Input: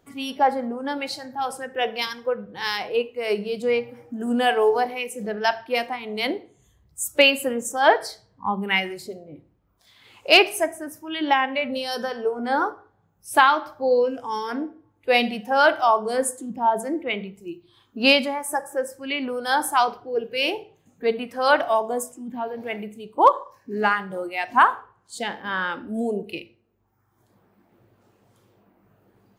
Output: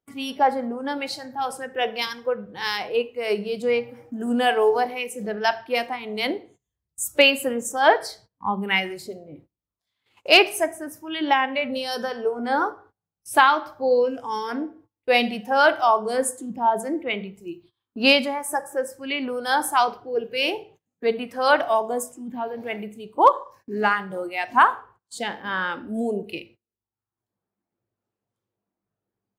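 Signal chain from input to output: gate -49 dBFS, range -25 dB

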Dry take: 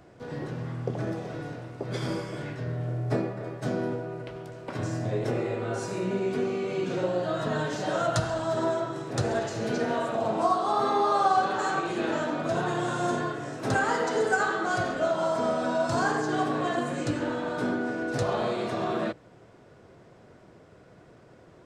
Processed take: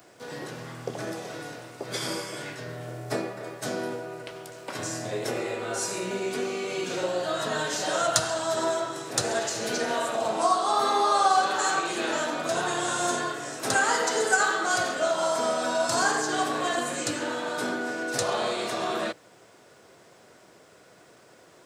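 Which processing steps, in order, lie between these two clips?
RIAA curve recording; trim +2 dB

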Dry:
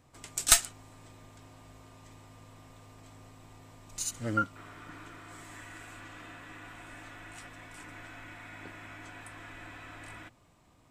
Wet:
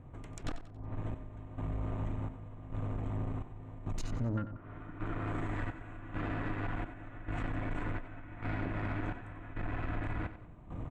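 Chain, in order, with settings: local Wiener filter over 9 samples; low-pass that closes with the level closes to 990 Hz, closed at -30 dBFS; tilt EQ -3 dB/octave; compression 16:1, threshold -45 dBFS, peak gain reduction 33 dB; trance gate ".....xxxxxxxx" 171 bpm -12 dB; valve stage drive 46 dB, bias 0.4; on a send: feedback delay 92 ms, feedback 38%, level -12.5 dB; on the sum: trim +17.5 dB

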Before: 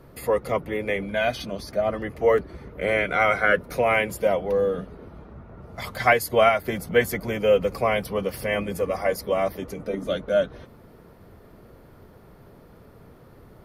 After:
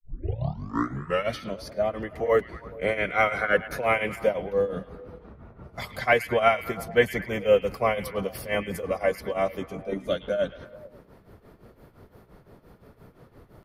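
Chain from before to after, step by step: tape start-up on the opening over 1.39 s; granulator 230 ms, grains 5.8 per s, spray 17 ms, pitch spread up and down by 0 st; repeats whose band climbs or falls 107 ms, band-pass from 2.6 kHz, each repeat -0.7 oct, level -11 dB

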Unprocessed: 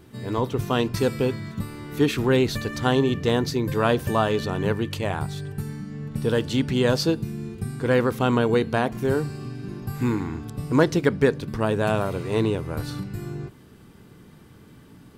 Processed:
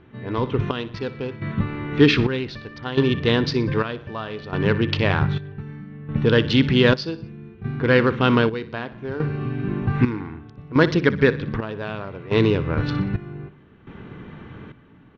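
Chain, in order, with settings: local Wiener filter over 9 samples; elliptic low-pass 5.2 kHz, stop band 70 dB; peaking EQ 2.6 kHz +4.5 dB 2.7 oct; feedback delay 61 ms, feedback 48%, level -16.5 dB; level rider gain up to 10.5 dB; trance gate "xxxxx.....x" 106 bpm -12 dB; dynamic bell 750 Hz, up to -7 dB, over -33 dBFS, Q 1.7

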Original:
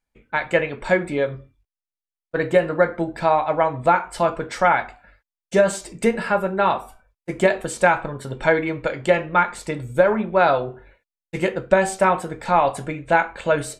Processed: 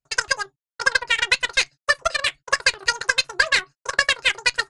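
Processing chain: wide varispeed 2.94×; Chebyshev shaper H 2 -23 dB, 7 -20 dB, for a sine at -2.5 dBFS; resampled via 22.05 kHz

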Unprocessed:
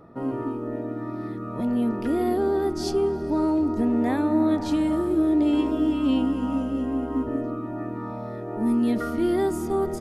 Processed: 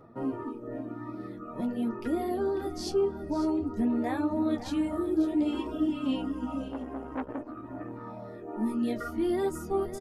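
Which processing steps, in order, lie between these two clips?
reverb removal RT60 1.5 s; flange 0.5 Hz, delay 7.7 ms, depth 10 ms, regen -27%; delay 547 ms -12.5 dB; 6.68–8.43 s: transformer saturation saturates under 880 Hz

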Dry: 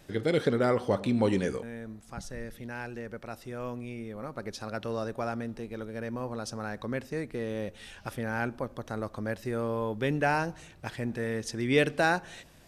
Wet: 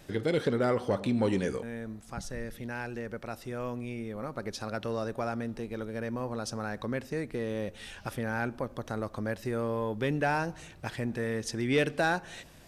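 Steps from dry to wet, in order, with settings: in parallel at -2.5 dB: compression, threshold -35 dBFS, peak gain reduction 15.5 dB; on the sum: saturation -13 dBFS, distortion -24 dB; trim -2.5 dB

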